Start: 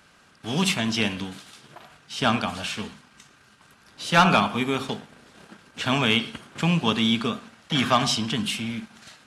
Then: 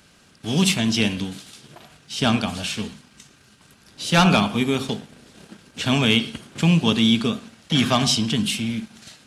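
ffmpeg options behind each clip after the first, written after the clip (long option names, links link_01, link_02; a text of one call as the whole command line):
ffmpeg -i in.wav -af "equalizer=frequency=1200:width_type=o:width=2.1:gain=-9,volume=6dB" out.wav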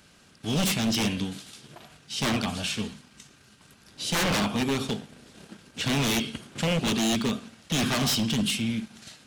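ffmpeg -i in.wav -af "aeval=exprs='0.141*(abs(mod(val(0)/0.141+3,4)-2)-1)':channel_layout=same,volume=-2.5dB" out.wav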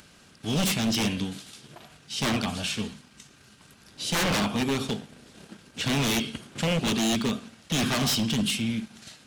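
ffmpeg -i in.wav -af "acompressor=mode=upward:threshold=-49dB:ratio=2.5" out.wav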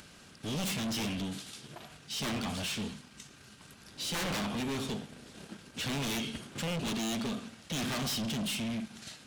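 ffmpeg -i in.wav -af "asoftclip=type=tanh:threshold=-32dB" out.wav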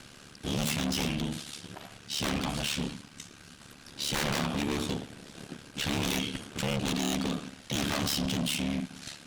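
ffmpeg -i in.wav -af "aeval=exprs='val(0)*sin(2*PI*36*n/s)':channel_layout=same,volume=6.5dB" out.wav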